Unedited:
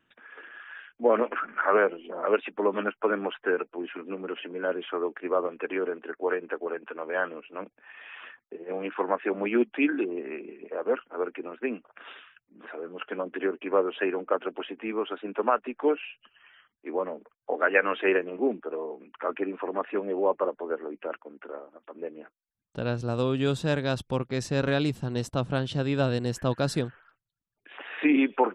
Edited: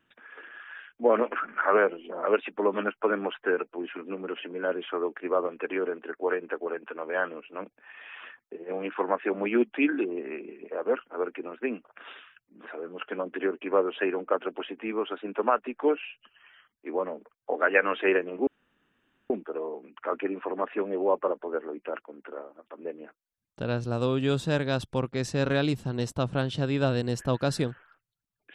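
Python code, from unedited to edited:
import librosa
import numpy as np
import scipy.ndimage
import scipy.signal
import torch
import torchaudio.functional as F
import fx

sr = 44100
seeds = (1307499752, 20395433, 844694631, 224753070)

y = fx.edit(x, sr, fx.insert_room_tone(at_s=18.47, length_s=0.83), tone=tone)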